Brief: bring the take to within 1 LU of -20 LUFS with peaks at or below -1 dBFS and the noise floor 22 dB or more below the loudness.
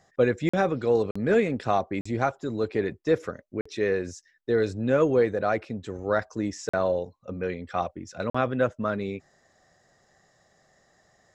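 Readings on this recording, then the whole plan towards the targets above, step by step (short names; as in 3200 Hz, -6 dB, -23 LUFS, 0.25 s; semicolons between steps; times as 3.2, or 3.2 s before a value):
dropouts 6; longest dropout 45 ms; loudness -27.0 LUFS; peak -9.5 dBFS; loudness target -20.0 LUFS
-> interpolate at 0.49/1.11/2.01/3.61/6.69/8.3, 45 ms; gain +7 dB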